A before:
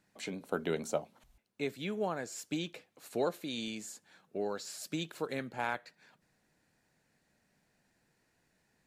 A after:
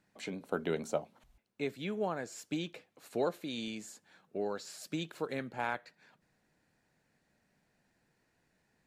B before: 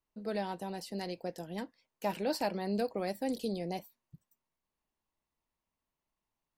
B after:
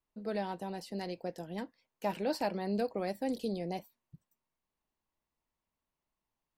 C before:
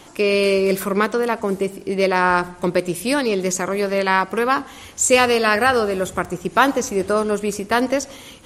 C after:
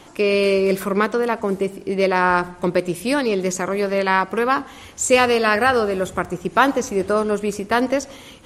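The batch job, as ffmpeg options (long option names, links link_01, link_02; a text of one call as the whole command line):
ffmpeg -i in.wav -af "highshelf=frequency=4600:gain=-5.5" out.wav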